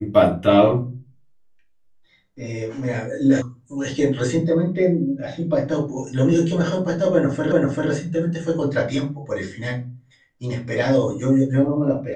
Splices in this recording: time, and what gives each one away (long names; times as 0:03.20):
0:03.42: cut off before it has died away
0:07.52: the same again, the last 0.39 s